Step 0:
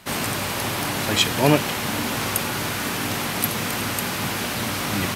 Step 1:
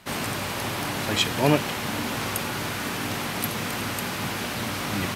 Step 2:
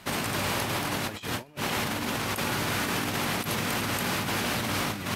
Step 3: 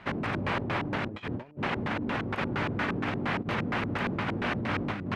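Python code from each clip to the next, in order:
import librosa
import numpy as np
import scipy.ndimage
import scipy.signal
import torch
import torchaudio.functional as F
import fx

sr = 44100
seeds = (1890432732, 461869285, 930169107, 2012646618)

y1 = fx.high_shelf(x, sr, hz=6500.0, db=-4.5)
y1 = F.gain(torch.from_numpy(y1), -3.0).numpy()
y2 = fx.over_compress(y1, sr, threshold_db=-30.0, ratio=-0.5)
y3 = fx.filter_lfo_lowpass(y2, sr, shape='square', hz=4.3, low_hz=350.0, high_hz=2100.0, q=1.1)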